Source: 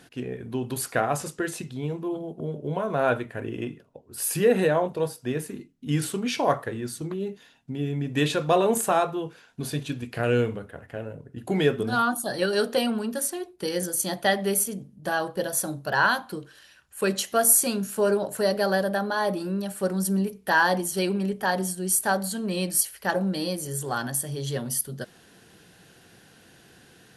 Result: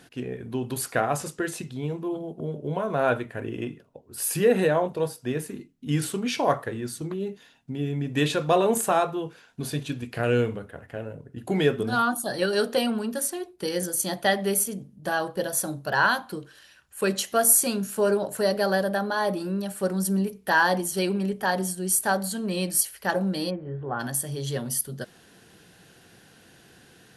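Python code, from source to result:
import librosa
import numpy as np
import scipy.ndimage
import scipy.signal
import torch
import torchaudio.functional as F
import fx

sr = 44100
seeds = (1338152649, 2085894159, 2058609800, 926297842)

y = fx.gaussian_blur(x, sr, sigma=4.5, at=(23.49, 23.99), fade=0.02)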